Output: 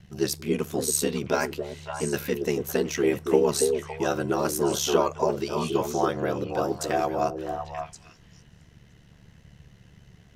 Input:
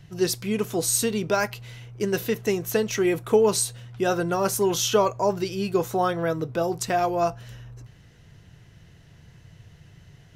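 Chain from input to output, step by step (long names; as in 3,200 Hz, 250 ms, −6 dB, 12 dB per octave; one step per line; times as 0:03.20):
ring modulation 36 Hz
echo through a band-pass that steps 280 ms, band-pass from 360 Hz, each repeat 1.4 octaves, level −2 dB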